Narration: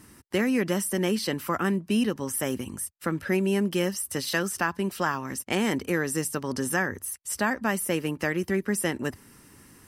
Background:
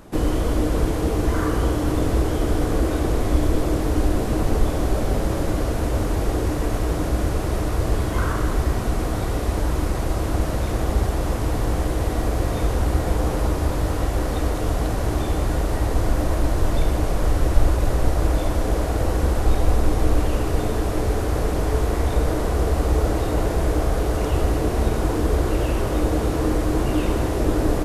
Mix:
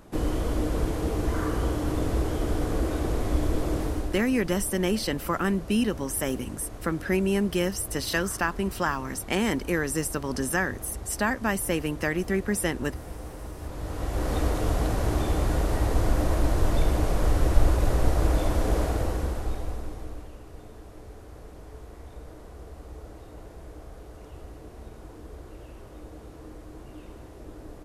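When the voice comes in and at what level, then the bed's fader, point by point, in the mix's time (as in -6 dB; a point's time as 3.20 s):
3.80 s, 0.0 dB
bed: 3.83 s -6 dB
4.33 s -17.5 dB
13.53 s -17.5 dB
14.33 s -3 dB
18.83 s -3 dB
20.36 s -23 dB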